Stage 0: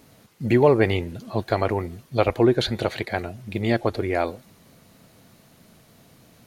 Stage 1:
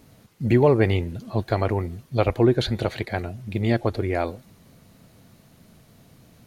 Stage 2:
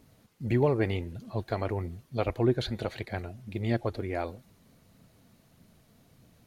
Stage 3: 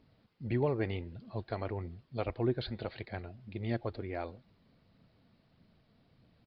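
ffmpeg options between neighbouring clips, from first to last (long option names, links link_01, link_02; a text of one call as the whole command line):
ffmpeg -i in.wav -af "lowshelf=frequency=190:gain=8,volume=-2.5dB" out.wav
ffmpeg -i in.wav -af "aphaser=in_gain=1:out_gain=1:delay=4.8:decay=0.25:speed=1.6:type=triangular,volume=-8dB" out.wav
ffmpeg -i in.wav -af "aresample=11025,aresample=44100,volume=-6dB" out.wav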